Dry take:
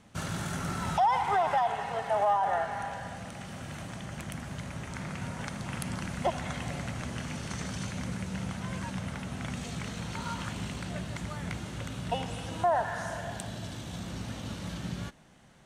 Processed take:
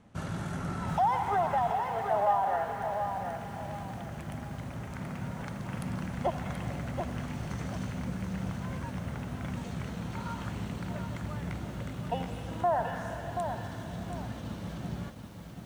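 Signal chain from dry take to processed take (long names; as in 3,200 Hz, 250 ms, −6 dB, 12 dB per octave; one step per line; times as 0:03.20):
high-shelf EQ 2,000 Hz −11 dB
feedback echo at a low word length 730 ms, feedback 35%, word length 9 bits, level −6 dB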